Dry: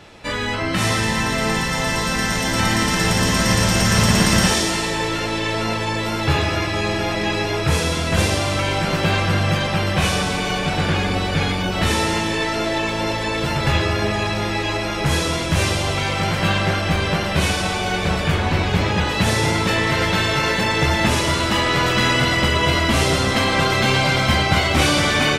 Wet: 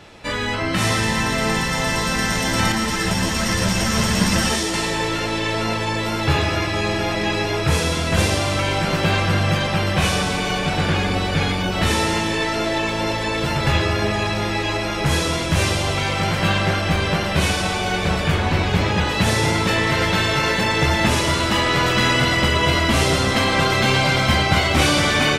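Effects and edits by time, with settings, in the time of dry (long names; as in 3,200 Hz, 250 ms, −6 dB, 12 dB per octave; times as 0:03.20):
0:02.72–0:04.74: string-ensemble chorus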